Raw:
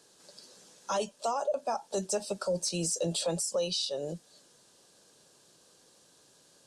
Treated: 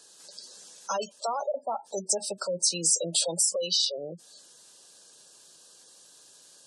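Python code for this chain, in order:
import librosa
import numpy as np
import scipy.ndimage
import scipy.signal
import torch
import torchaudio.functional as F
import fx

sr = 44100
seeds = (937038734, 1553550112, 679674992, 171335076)

y = fx.spec_gate(x, sr, threshold_db=-20, keep='strong')
y = fx.tilt_eq(y, sr, slope=2.5)
y = y * 10.0 ** (2.0 / 20.0)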